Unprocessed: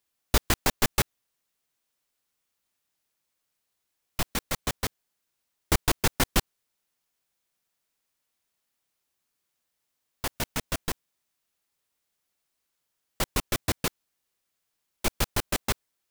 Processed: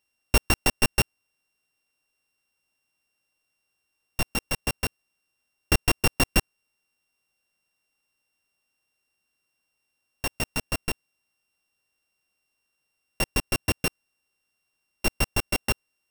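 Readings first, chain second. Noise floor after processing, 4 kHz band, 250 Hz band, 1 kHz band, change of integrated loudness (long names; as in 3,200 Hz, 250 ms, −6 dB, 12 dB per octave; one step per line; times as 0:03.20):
−79 dBFS, +2.0 dB, +2.0 dB, −0.5 dB, +2.5 dB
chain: samples sorted by size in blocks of 16 samples
level +2 dB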